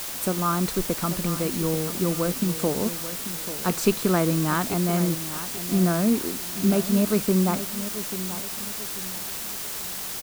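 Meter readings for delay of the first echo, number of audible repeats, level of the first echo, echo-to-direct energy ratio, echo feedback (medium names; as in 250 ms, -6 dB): 838 ms, 3, -12.5 dB, -12.0 dB, 36%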